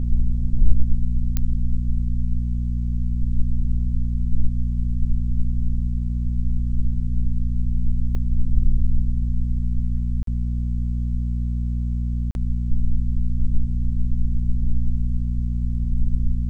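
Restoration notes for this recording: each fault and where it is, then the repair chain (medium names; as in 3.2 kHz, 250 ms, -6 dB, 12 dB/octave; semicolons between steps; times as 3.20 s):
hum 60 Hz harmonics 4 -23 dBFS
1.37 s: pop -9 dBFS
8.15 s: dropout 2.3 ms
10.23–10.27 s: dropout 43 ms
12.31–12.35 s: dropout 41 ms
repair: de-click; de-hum 60 Hz, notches 4; interpolate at 8.15 s, 2.3 ms; interpolate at 10.23 s, 43 ms; interpolate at 12.31 s, 41 ms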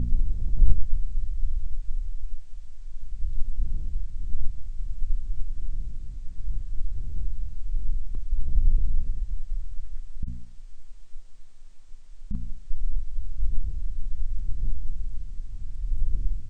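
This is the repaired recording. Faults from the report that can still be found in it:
nothing left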